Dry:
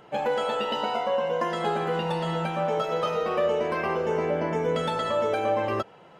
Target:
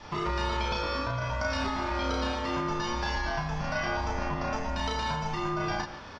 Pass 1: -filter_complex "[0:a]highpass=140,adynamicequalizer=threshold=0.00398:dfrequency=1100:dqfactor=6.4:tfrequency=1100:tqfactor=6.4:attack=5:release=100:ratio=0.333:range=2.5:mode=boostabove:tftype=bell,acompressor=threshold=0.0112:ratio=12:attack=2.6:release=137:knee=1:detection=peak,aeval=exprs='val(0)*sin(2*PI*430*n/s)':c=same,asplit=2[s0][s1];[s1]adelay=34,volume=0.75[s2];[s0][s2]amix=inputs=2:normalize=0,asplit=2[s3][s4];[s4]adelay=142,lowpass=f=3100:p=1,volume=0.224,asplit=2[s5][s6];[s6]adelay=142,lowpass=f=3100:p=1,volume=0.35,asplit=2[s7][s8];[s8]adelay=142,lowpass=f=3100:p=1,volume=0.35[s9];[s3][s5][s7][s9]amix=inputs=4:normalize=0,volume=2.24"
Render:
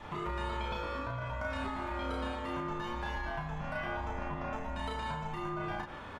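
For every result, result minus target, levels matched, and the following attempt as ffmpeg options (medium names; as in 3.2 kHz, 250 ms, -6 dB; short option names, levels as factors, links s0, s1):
compression: peak gain reduction +6 dB; 4 kHz band -4.0 dB
-filter_complex "[0:a]highpass=140,adynamicequalizer=threshold=0.00398:dfrequency=1100:dqfactor=6.4:tfrequency=1100:tqfactor=6.4:attack=5:release=100:ratio=0.333:range=2.5:mode=boostabove:tftype=bell,acompressor=threshold=0.0251:ratio=12:attack=2.6:release=137:knee=1:detection=peak,aeval=exprs='val(0)*sin(2*PI*430*n/s)':c=same,asplit=2[s0][s1];[s1]adelay=34,volume=0.75[s2];[s0][s2]amix=inputs=2:normalize=0,asplit=2[s3][s4];[s4]adelay=142,lowpass=f=3100:p=1,volume=0.224,asplit=2[s5][s6];[s6]adelay=142,lowpass=f=3100:p=1,volume=0.35,asplit=2[s7][s8];[s8]adelay=142,lowpass=f=3100:p=1,volume=0.35[s9];[s3][s5][s7][s9]amix=inputs=4:normalize=0,volume=2.24"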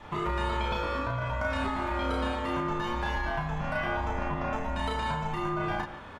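4 kHz band -4.5 dB
-filter_complex "[0:a]highpass=140,adynamicequalizer=threshold=0.00398:dfrequency=1100:dqfactor=6.4:tfrequency=1100:tqfactor=6.4:attack=5:release=100:ratio=0.333:range=2.5:mode=boostabove:tftype=bell,lowpass=f=5200:t=q:w=9.2,acompressor=threshold=0.0251:ratio=12:attack=2.6:release=137:knee=1:detection=peak,aeval=exprs='val(0)*sin(2*PI*430*n/s)':c=same,asplit=2[s0][s1];[s1]adelay=34,volume=0.75[s2];[s0][s2]amix=inputs=2:normalize=0,asplit=2[s3][s4];[s4]adelay=142,lowpass=f=3100:p=1,volume=0.224,asplit=2[s5][s6];[s6]adelay=142,lowpass=f=3100:p=1,volume=0.35,asplit=2[s7][s8];[s8]adelay=142,lowpass=f=3100:p=1,volume=0.35[s9];[s3][s5][s7][s9]amix=inputs=4:normalize=0,volume=2.24"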